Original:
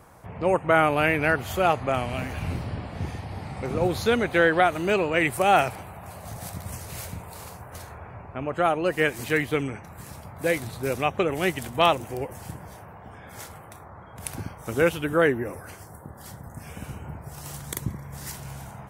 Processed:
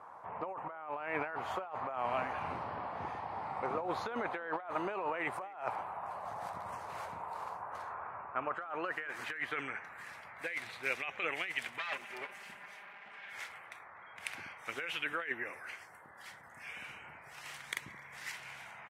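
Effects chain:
0:11.78–0:13.33: lower of the sound and its delayed copy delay 5 ms
band-pass filter sweep 1,000 Hz → 2,200 Hz, 0:07.56–0:10.79
compressor whose output falls as the input rises −38 dBFS, ratio −1
far-end echo of a speakerphone 250 ms, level −24 dB

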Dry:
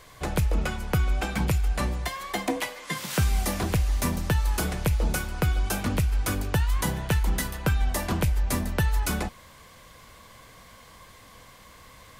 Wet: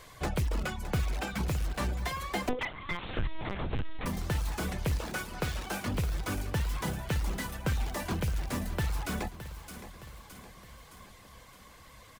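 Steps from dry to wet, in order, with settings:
in parallel at −8.5 dB: wrap-around overflow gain 21.5 dB
0:04.98–0:05.88: on the sum: low-shelf EQ 200 Hz −10 dB
speech leveller within 3 dB 0.5 s
reverb reduction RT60 0.59 s
on a send: repeating echo 616 ms, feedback 54%, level −13 dB
0:02.49–0:04.06: on the sum: linear-prediction vocoder at 8 kHz pitch kept
slew-rate limiting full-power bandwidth 140 Hz
level −5.5 dB

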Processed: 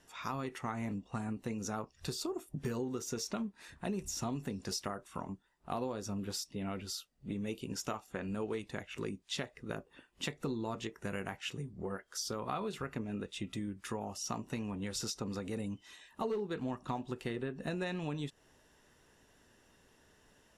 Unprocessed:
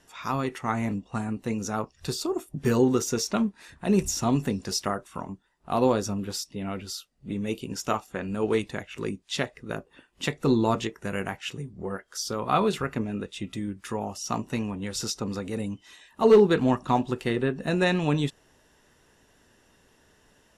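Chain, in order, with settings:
downward compressor 6 to 1, threshold −30 dBFS, peak gain reduction 17 dB
level −4.5 dB

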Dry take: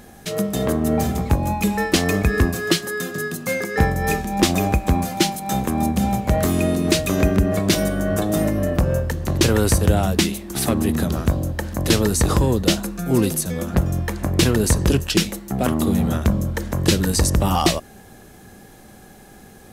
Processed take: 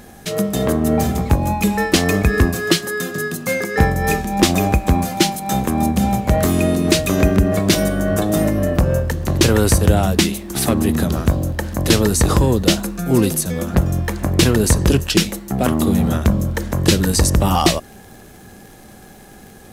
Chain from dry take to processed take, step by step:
surface crackle 14 per second −37 dBFS, from 0:07.20 73 per second
level +3 dB

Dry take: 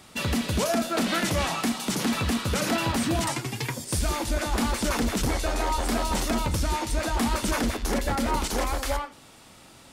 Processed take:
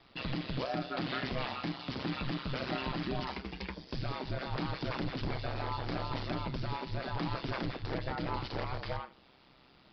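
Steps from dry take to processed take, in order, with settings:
ring modulation 65 Hz
downsampling to 11,025 Hz
level −7 dB

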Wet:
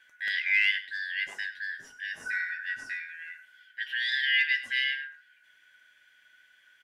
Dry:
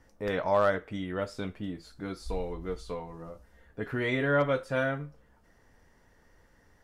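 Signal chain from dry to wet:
band-splitting scrambler in four parts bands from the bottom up 4123
low-shelf EQ 110 Hz −7 dB
single-tap delay 100 ms −15 dB

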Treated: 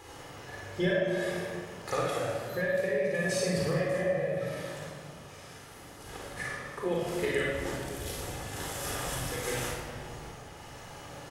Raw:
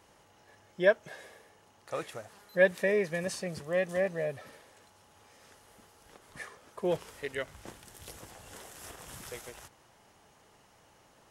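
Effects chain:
downward compressor 10 to 1, threshold −40 dBFS, peak gain reduction 22.5 dB
sample-and-hold tremolo
on a send: ambience of single reflections 40 ms −6 dB, 54 ms −5 dB
on the sum: rectangular room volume 3,300 cubic metres, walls mixed, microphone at 4 metres
level +9 dB

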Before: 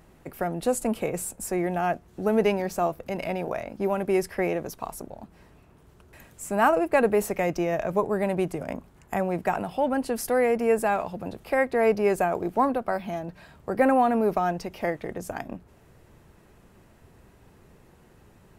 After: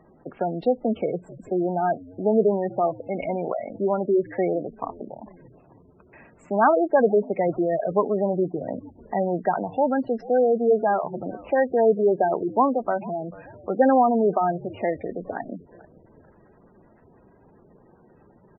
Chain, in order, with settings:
low-pass filter 9,500 Hz
high-shelf EQ 5,700 Hz −4.5 dB
treble cut that deepens with the level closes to 2,100 Hz, closed at −19.5 dBFS
three-way crossover with the lows and the highs turned down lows −12 dB, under 150 Hz, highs −23 dB, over 4,000 Hz
on a send: echo with shifted repeats 440 ms, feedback 42%, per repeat −83 Hz, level −20.5 dB
on the sum: gate on every frequency bin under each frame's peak −15 dB strong
level +3.5 dB

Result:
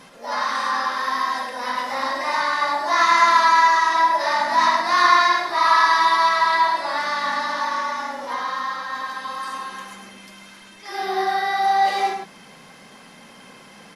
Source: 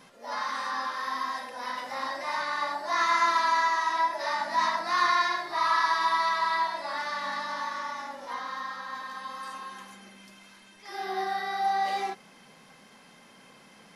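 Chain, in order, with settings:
slap from a distant wall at 18 metres, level −6 dB
level +8 dB
Opus 64 kbit/s 48,000 Hz

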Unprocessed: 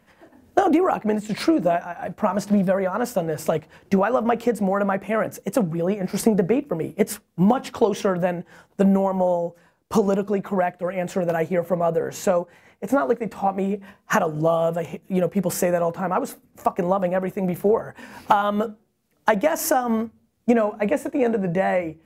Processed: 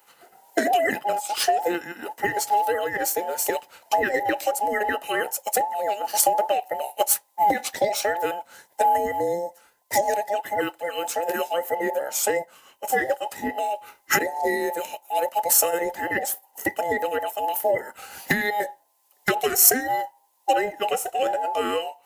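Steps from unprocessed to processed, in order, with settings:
frequency inversion band by band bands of 1,000 Hz
RIAA equalisation recording
level −1.5 dB

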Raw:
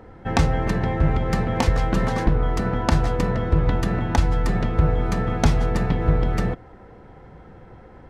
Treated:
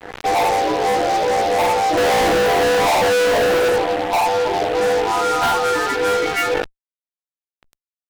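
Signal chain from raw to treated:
every partial snapped to a pitch grid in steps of 2 semitones
low-pass filter sweep 780 Hz → 3,700 Hz, 0:04.81–0:07.01
in parallel at +0.5 dB: downward compressor, threshold −33 dBFS, peak gain reduction 18.5 dB
0:01.97–0:03.68: on the sum: parametric band 540 Hz +14.5 dB 2.8 octaves
reverb reduction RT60 1.7 s
elliptic high-pass filter 290 Hz, stop band 40 dB
coupled-rooms reverb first 0.58 s, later 2.3 s, DRR −2 dB
spectral peaks only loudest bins 16
fuzz pedal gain 29 dB, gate −33 dBFS
level that may fall only so fast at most 42 dB per second
level −1.5 dB

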